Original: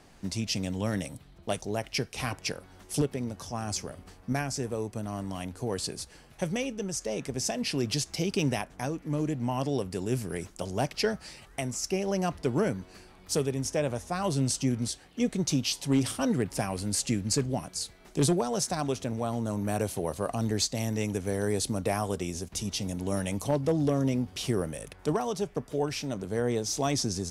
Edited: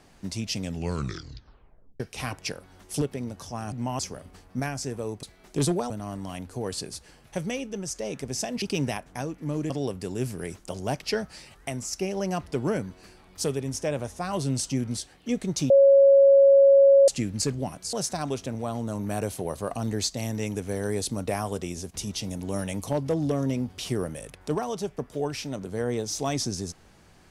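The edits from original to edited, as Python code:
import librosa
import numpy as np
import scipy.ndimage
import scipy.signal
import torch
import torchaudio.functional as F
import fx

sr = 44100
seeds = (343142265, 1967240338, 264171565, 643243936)

y = fx.edit(x, sr, fx.tape_stop(start_s=0.61, length_s=1.39),
    fx.cut(start_s=7.68, length_s=0.58),
    fx.move(start_s=9.34, length_s=0.27, to_s=3.72),
    fx.bleep(start_s=15.61, length_s=1.38, hz=552.0, db=-12.0),
    fx.move(start_s=17.84, length_s=0.67, to_s=4.96), tone=tone)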